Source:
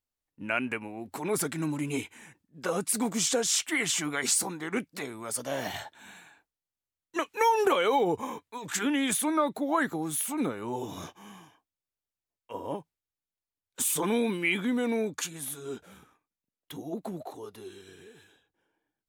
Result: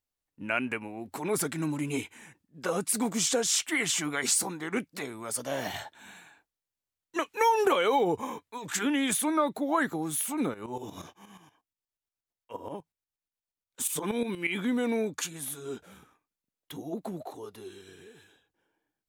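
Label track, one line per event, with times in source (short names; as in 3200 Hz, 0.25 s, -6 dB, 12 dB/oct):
10.540000	14.570000	tremolo saw up 8.4 Hz, depth 75%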